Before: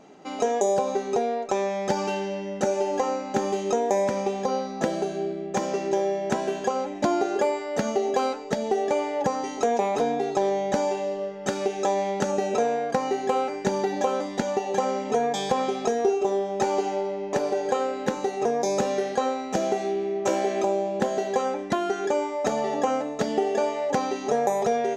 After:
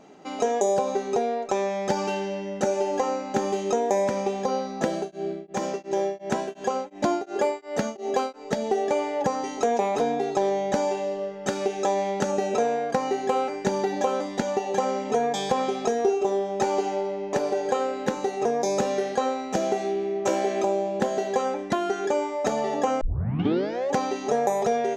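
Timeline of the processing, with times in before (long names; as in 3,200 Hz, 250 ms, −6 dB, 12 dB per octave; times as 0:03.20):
0:04.94–0:08.50: tremolo along a rectified sine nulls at 2.8 Hz
0:23.01: tape start 0.92 s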